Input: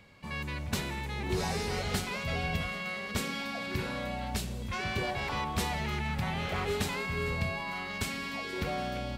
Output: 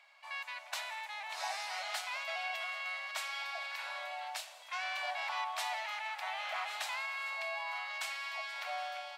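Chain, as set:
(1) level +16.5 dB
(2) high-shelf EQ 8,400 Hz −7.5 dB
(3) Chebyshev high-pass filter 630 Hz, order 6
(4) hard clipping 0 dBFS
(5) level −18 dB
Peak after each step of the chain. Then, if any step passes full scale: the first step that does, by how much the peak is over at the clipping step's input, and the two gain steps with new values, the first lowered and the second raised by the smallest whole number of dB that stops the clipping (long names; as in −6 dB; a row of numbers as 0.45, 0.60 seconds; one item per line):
−1.0, −1.5, −5.5, −5.5, −23.5 dBFS
no step passes full scale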